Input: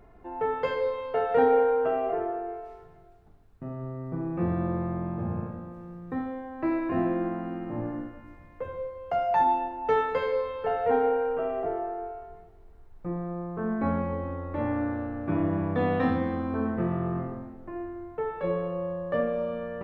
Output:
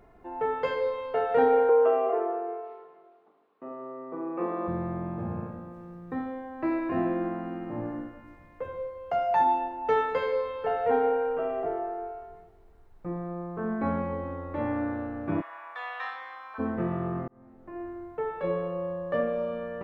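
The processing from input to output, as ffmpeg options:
-filter_complex "[0:a]asettb=1/sr,asplit=3[a][b][c];[a]atrim=end=1.694[d];[b]atrim=start=1.69:end=4.68,asetpts=PTS-STARTPTS,afade=t=in:d=0.004:c=qsin,afade=t=out:st=2.986:d=0.004:c=qsin,highpass=f=270:w=0.5412,highpass=f=270:w=1.3066,equalizer=f=480:t=q:w=4:g=6,equalizer=f=1.1k:t=q:w=4:g=9,equalizer=f=1.6k:t=q:w=4:g=-4,lowpass=f=3.6k:w=0.5412,lowpass=f=3.6k:w=1.3066[e];[c]atrim=start=4.676[f];[d][e]acrossfade=d=0.004:c1=hsin:c2=qsin[g];[g][f]acrossfade=d=0.004:c1=qsin:c2=hsin,asplit=3[h][i][j];[h]afade=t=out:st=15.4:d=0.02[k];[i]highpass=f=970:w=0.5412,highpass=f=970:w=1.3066,afade=t=in:st=15.4:d=0.02,afade=t=out:st=16.58:d=0.02[l];[j]afade=t=in:st=16.58:d=0.02[m];[k][l][m]amix=inputs=3:normalize=0,asplit=2[n][o];[n]atrim=end=17.28,asetpts=PTS-STARTPTS,afade=t=out:st=17.276:d=0.004:c=hsin[p];[o]atrim=start=17.28,asetpts=PTS-STARTPTS,afade=t=in:d=0.6[q];[p][q]concat=n=2:v=0:a=1,lowshelf=f=150:g=-5.5"

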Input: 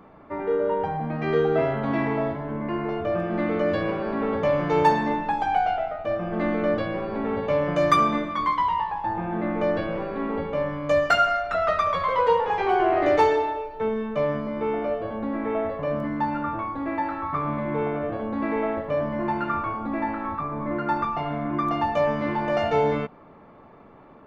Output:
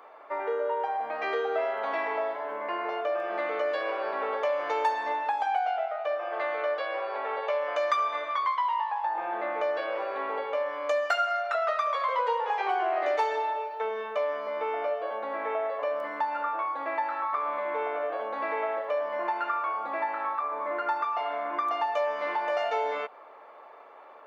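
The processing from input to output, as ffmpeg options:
-filter_complex "[0:a]asettb=1/sr,asplit=3[a][b][c];[a]atrim=end=5.864[d];[b]atrim=start=5.86:end=9.15,asetpts=PTS-STARTPTS,afade=t=in:d=0.004:c=qsin,afade=t=out:st=3.286:d=0.004:c=qsin,highpass=440,lowpass=6.1k[e];[c]atrim=start=9.146[f];[d][e]acrossfade=d=0.004:c1=hsin:c2=qsin[g];[g][f]acrossfade=d=0.004:c1=qsin:c2=hsin,highpass=f=520:w=0.5412,highpass=f=520:w=1.3066,acompressor=threshold=-31dB:ratio=2.5,volume=3dB"

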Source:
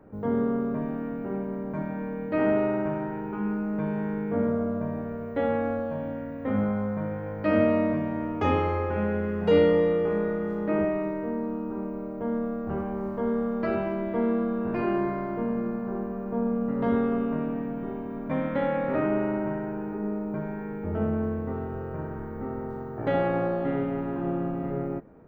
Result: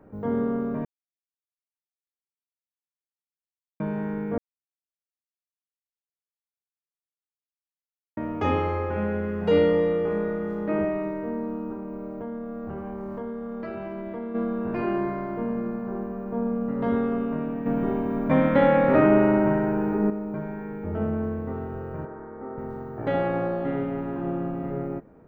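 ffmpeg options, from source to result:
-filter_complex "[0:a]asplit=3[a][b][c];[a]afade=t=out:st=11.73:d=0.02[d];[b]acompressor=threshold=-30dB:ratio=6:attack=3.2:release=140:knee=1:detection=peak,afade=t=in:st=11.73:d=0.02,afade=t=out:st=14.34:d=0.02[e];[c]afade=t=in:st=14.34:d=0.02[f];[d][e][f]amix=inputs=3:normalize=0,asettb=1/sr,asplit=3[g][h][i];[g]atrim=end=22.054[j];[h]atrim=start=22.05:end=22.58,asetpts=PTS-STARTPTS,afade=t=in:d=0.004:c=qsin,afade=t=out:st=0.526:d=0.004:c=qsin,acrossover=split=270 2100:gain=0.2 1 0.0631[k][l][m];[k][l][m]amix=inputs=3:normalize=0[n];[i]atrim=start=22.576[o];[j][n]acrossfade=d=0.004:c1=hsin:c2=qsin[p];[p][o]acrossfade=d=0.004:c1=qsin:c2=hsin,asplit=7[q][r][s][t][u][v][w];[q]atrim=end=0.85,asetpts=PTS-STARTPTS,afade=t=out:st=0.846:d=0.004:c=hsin[x];[r]atrim=start=0.85:end=3.8,asetpts=PTS-STARTPTS,volume=0[y];[s]atrim=start=3.8:end=4.38,asetpts=PTS-STARTPTS,afade=t=in:d=0.004:c=hsin,afade=t=out:st=0.576:d=0.004:c=hsin[z];[t]atrim=start=4.38:end=8.17,asetpts=PTS-STARTPTS,volume=0[aa];[u]atrim=start=8.17:end=17.662,asetpts=PTS-STARTPTS,afade=t=in:d=0.004:c=hsin[ab];[v]atrim=start=17.658:end=20.102,asetpts=PTS-STARTPTS,volume=8dB[ac];[w]atrim=start=20.098[ad];[x][y][z][aa][ab]concat=n=5:v=0:a=1[ae];[ae][ac]acrossfade=d=0.004:c1=hsin:c2=hsin[af];[af][ad]acrossfade=d=0.004:c1=hsin:c2=hsin"

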